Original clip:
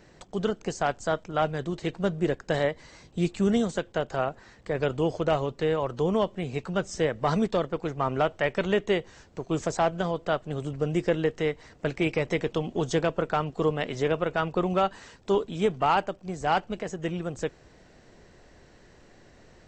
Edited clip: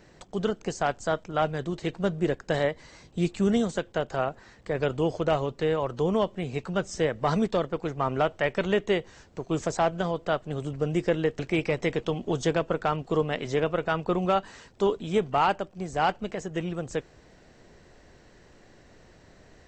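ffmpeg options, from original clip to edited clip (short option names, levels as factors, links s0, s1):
-filter_complex "[0:a]asplit=2[s0][s1];[s0]atrim=end=11.392[s2];[s1]atrim=start=11.868[s3];[s2][s3]acrossfade=d=0.004:c1=hsin:c2=hsin"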